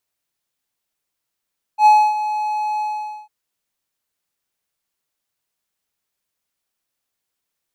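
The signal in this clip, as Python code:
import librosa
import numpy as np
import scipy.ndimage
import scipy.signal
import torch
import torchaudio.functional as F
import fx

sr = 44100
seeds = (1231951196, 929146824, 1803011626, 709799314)

y = fx.adsr_tone(sr, wave='triangle', hz=849.0, attack_ms=79.0, decay_ms=277.0, sustain_db=-13.0, held_s=1.02, release_ms=481.0, level_db=-4.0)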